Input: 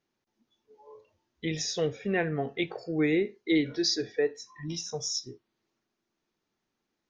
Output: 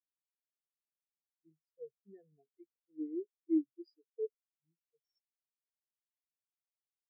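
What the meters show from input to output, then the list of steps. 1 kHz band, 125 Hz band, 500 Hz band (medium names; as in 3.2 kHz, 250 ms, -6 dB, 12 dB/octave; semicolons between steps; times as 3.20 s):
under -40 dB, under -35 dB, -14.5 dB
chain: spectral contrast expander 4:1; trim -8 dB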